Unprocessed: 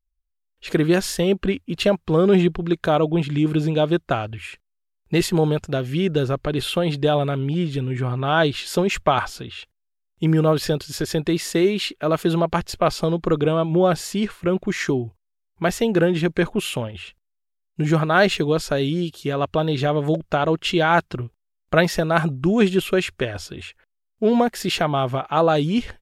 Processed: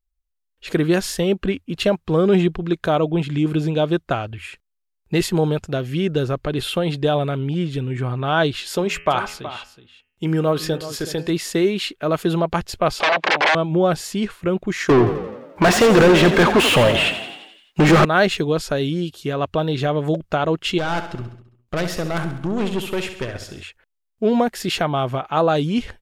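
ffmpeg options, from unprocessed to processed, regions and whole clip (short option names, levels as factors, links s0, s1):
-filter_complex "[0:a]asettb=1/sr,asplit=3[s0][s1][s2];[s0]atrim=end=8.734[s3];[s1]atrim=start=8.73:end=11.3,asetpts=PTS-STARTPTS,afade=t=in:d=0.004:c=qsin,afade=t=out:st=2.566:d=0.004:c=qsin,lowshelf=f=170:g=-6,bandreject=f=83.27:t=h:w=4,bandreject=f=166.54:t=h:w=4,bandreject=f=249.81:t=h:w=4,bandreject=f=333.08:t=h:w=4,bandreject=f=416.35:t=h:w=4,bandreject=f=499.62:t=h:w=4,bandreject=f=582.89:t=h:w=4,bandreject=f=666.16:t=h:w=4,bandreject=f=749.43:t=h:w=4,bandreject=f=832.7:t=h:w=4,bandreject=f=915.97:t=h:w=4,bandreject=f=999.24:t=h:w=4,bandreject=f=1082.51:t=h:w=4,bandreject=f=1165.78:t=h:w=4,bandreject=f=1249.05:t=h:w=4,bandreject=f=1332.32:t=h:w=4,bandreject=f=1415.59:t=h:w=4,bandreject=f=1498.86:t=h:w=4,bandreject=f=1582.13:t=h:w=4,bandreject=f=1665.4:t=h:w=4,bandreject=f=1748.67:t=h:w=4,bandreject=f=1831.94:t=h:w=4,bandreject=f=1915.21:t=h:w=4,bandreject=f=1998.48:t=h:w=4,bandreject=f=2081.75:t=h:w=4,bandreject=f=2165.02:t=h:w=4,bandreject=f=2248.29:t=h:w=4,bandreject=f=2331.56:t=h:w=4,bandreject=f=2414.83:t=h:w=4,bandreject=f=2498.1:t=h:w=4,bandreject=f=2581.37:t=h:w=4,bandreject=f=2664.64:t=h:w=4,bandreject=f=2747.91:t=h:w=4,bandreject=f=2831.18:t=h:w=4,bandreject=f=2914.45:t=h:w=4,bandreject=f=2997.72:t=h:w=4,bandreject=f=3080.99:t=h:w=4,bandreject=f=3164.26:t=h:w=4,aecho=1:1:372:0.211,atrim=end_sample=113337[s4];[s2]atrim=start=11.296[s5];[s3][s4]acrossfade=d=0.004:c1=hsin:c2=qsin[s6];[s6][s5]acrossfade=d=0.004:c1=qsin:c2=hsin,asettb=1/sr,asplit=3[s7][s8][s9];[s7]atrim=end=13.004[s10];[s8]atrim=start=13:end=13.55,asetpts=PTS-STARTPTS,afade=t=in:d=0.004:c=qsin,afade=t=out:st=0.546:d=0.004:c=qsin,aeval=exprs='0.398*sin(PI/2*7.94*val(0)/0.398)':c=same,highpass=700,lowpass=2900,equalizer=f=1300:w=3.2:g=-7.5[s11];[s9]atrim=start=13.546[s12];[s10][s11]acrossfade=d=0.004:c1=hsin:c2=qsin[s13];[s13][s12]acrossfade=d=0.004:c1=qsin:c2=hsin,asettb=1/sr,asplit=3[s14][s15][s16];[s14]atrim=end=14.894[s17];[s15]atrim=start=14.89:end=18.05,asetpts=PTS-STARTPTS,afade=t=in:d=0.004:c=qsin,afade=t=out:st=3.156:d=0.004:c=qsin,asplit=2[s18][s19];[s19]highpass=f=720:p=1,volume=56.2,asoftclip=type=tanh:threshold=0.531[s20];[s18][s20]amix=inputs=2:normalize=0,lowpass=f=2100:p=1,volume=0.501,asplit=8[s21][s22][s23][s24][s25][s26][s27][s28];[s22]adelay=86,afreqshift=32,volume=0.316[s29];[s23]adelay=172,afreqshift=64,volume=0.186[s30];[s24]adelay=258,afreqshift=96,volume=0.11[s31];[s25]adelay=344,afreqshift=128,volume=0.0653[s32];[s26]adelay=430,afreqshift=160,volume=0.0385[s33];[s27]adelay=516,afreqshift=192,volume=0.0226[s34];[s28]adelay=602,afreqshift=224,volume=0.0133[s35];[s21][s29][s30][s31][s32][s33][s34][s35]amix=inputs=8:normalize=0,atrim=end_sample=139356[s36];[s16]atrim=start=18.046[s37];[s17][s36]acrossfade=d=0.004:c1=hsin:c2=qsin[s38];[s38][s37]acrossfade=d=0.004:c1=qsin:c2=hsin,asettb=1/sr,asplit=3[s39][s40][s41];[s39]atrim=end=20.784[s42];[s40]atrim=start=20.78:end=23.63,asetpts=PTS-STARTPTS,afade=t=in:d=0.004:c=qsin,afade=t=out:st=2.846:d=0.004:c=qsin,aeval=exprs='(tanh(8.91*val(0)+0.5)-tanh(0.5))/8.91':c=same,aecho=1:1:67|134|201|268|335|402:0.316|0.174|0.0957|0.0526|0.0289|0.0159,atrim=end_sample=125685[s43];[s41]atrim=start=23.626[s44];[s42][s43]acrossfade=d=0.004:c1=hsin:c2=qsin[s45];[s45][s44]acrossfade=d=0.004:c1=qsin:c2=hsin"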